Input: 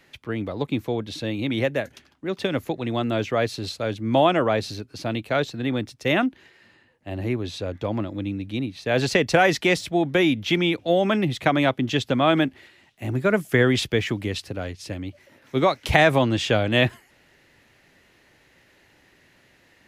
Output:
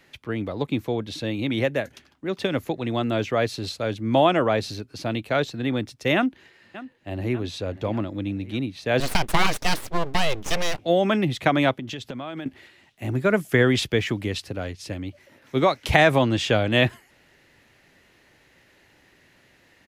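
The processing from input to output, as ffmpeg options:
-filter_complex "[0:a]asplit=2[a][b];[b]afade=t=in:st=6.15:d=0.01,afade=t=out:st=7.33:d=0.01,aecho=0:1:590|1180|1770|2360|2950|3540:0.158489|0.0950936|0.0570562|0.0342337|0.0205402|0.0123241[c];[a][c]amix=inputs=2:normalize=0,asettb=1/sr,asplit=3[d][e][f];[d]atrim=end=9.004[g];[e]atrim=start=9:end=10.79,asetpts=PTS-STARTPTS,afade=t=in:d=0.004:c=qsin,afade=t=out:st=1.786:d=0.004:c=qsin,aeval=exprs='abs(val(0))':c=same[h];[f]atrim=start=10.786[i];[g][h]acrossfade=d=0.004:c1=hsin:c2=qsin[j];[j][i]acrossfade=d=0.004:c1=qsin:c2=hsin,asettb=1/sr,asplit=3[k][l][m];[k]atrim=end=11.724[n];[l]atrim=start=11.72:end=12.46,asetpts=PTS-STARTPTS,afade=t=in:d=0.004:c=qsin,afade=t=out:st=0.736:d=0.004:c=qsin,acompressor=threshold=-29dB:ratio=16:attack=3.2:release=140:knee=1:detection=peak[o];[m]atrim=start=12.456[p];[n][o]acrossfade=d=0.004:c1=hsin:c2=qsin[q];[q][p]acrossfade=d=0.004:c1=qsin:c2=hsin"

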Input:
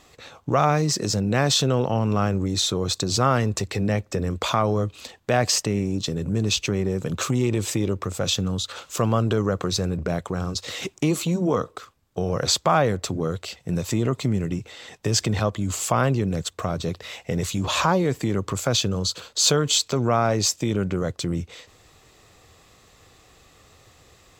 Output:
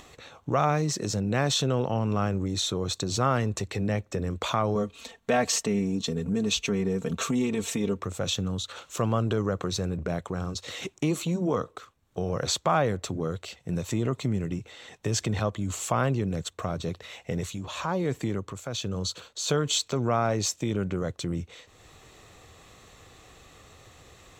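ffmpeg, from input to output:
-filter_complex "[0:a]asettb=1/sr,asplit=3[a][b][c];[a]atrim=end=4.754[d];[b]atrim=start=4.75:end=8,asetpts=PTS-STARTPTS,afade=t=in:d=0.004:c=qsin,afade=t=out:st=3.246:d=0.004:c=qsin,aecho=1:1:4.4:0.76,atrim=end_sample=143325[e];[c]atrim=start=7.996[f];[d][e]acrossfade=d=0.004:c1=hsin:c2=qsin[g];[g][f]acrossfade=d=0.004:c1=qsin:c2=hsin,asplit=3[h][i][j];[h]afade=t=out:st=17.05:d=0.02[k];[i]tremolo=f=1.1:d=0.6,afade=t=in:st=17.05:d=0.02,afade=t=out:st=19.48:d=0.02[l];[j]afade=t=in:st=19.48:d=0.02[m];[k][l][m]amix=inputs=3:normalize=0,highshelf=f=12k:g=-7,bandreject=f=4.9k:w=7.7,acompressor=mode=upward:threshold=-39dB:ratio=2.5,volume=-4.5dB"

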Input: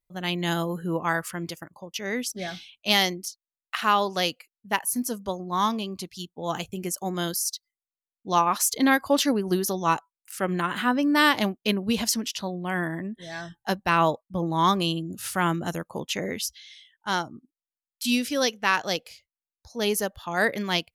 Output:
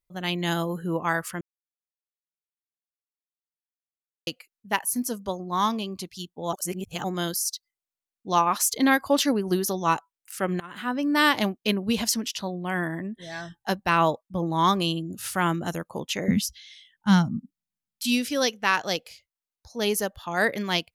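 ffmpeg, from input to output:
-filter_complex "[0:a]asettb=1/sr,asplit=3[a][b][c];[a]atrim=end=16.284[d];[b]atrim=start=16.28:end=18.03,asetpts=PTS-STARTPTS,afade=t=in:d=0.004:c=qsin,afade=t=out:st=1.746:d=0.004:c=qsin,lowshelf=f=280:t=q:w=3:g=11.5[e];[c]atrim=start=18.026[f];[d][e]acrossfade=d=0.004:c1=hsin:c2=qsin[g];[g][f]acrossfade=d=0.004:c1=qsin:c2=hsin,asplit=6[h][i][j][k][l][m];[h]atrim=end=1.41,asetpts=PTS-STARTPTS,afade=t=out:st=1.406:d=0.004:c=hsin[n];[i]atrim=start=1.41:end=4.27,asetpts=PTS-STARTPTS,volume=0[o];[j]atrim=start=4.27:end=6.532,asetpts=PTS-STARTPTS,afade=t=in:d=0.004:c=hsin[p];[k]atrim=start=6.528:end=7.042,asetpts=PTS-STARTPTS,areverse[q];[l]atrim=start=7.038:end=10.6,asetpts=PTS-STARTPTS,afade=t=out:st=3.558:d=0.004:c=hsin:silence=0.0891251[r];[m]atrim=start=10.6,asetpts=PTS-STARTPTS,afade=t=in:d=0.87:c=qsin:silence=0.0891251[s];[n][o][p]concat=n=3:v=0:a=1[t];[t][q]acrossfade=d=0.004:c1=hsin:c2=hsin[u];[r][s]concat=n=2:v=0:a=1[v];[u][v]acrossfade=d=0.004:c1=hsin:c2=hsin"

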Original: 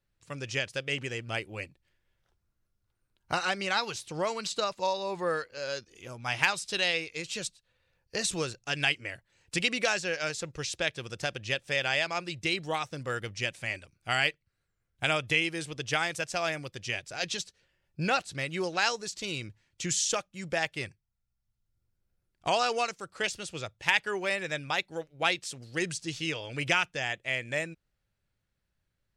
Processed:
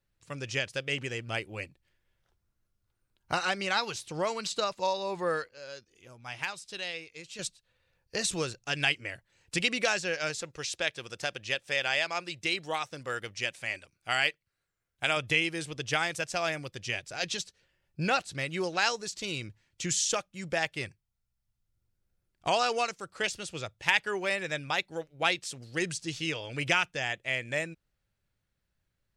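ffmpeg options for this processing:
-filter_complex "[0:a]asettb=1/sr,asplit=3[a][b][c];[a]atrim=end=10.424[d];[b]atrim=start=10.42:end=15.17,asetpts=PTS-STARTPTS,afade=t=in:d=0.004:c=qsin,afade=t=out:st=4.746:d=0.004:c=qsin,lowshelf=f=250:g=-9.5[e];[c]atrim=start=15.166[f];[d][e]acrossfade=d=0.004:c1=hsin:c2=qsin[g];[g][f]acrossfade=d=0.004:c1=qsin:c2=hsin,asplit=3[h][i][j];[h]atrim=end=5.492[k];[i]atrim=start=5.488:end=7.392,asetpts=PTS-STARTPTS,volume=-9dB[l];[j]atrim=start=7.388[m];[k][l]acrossfade=d=0.004:c1=hsin:c2=hsin[n];[n][m]acrossfade=d=0.004:c1=hsin:c2=hsin"

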